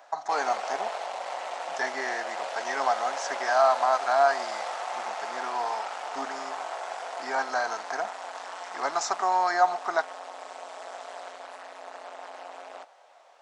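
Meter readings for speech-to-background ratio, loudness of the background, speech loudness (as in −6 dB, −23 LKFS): 8.0 dB, −36.0 LKFS, −28.0 LKFS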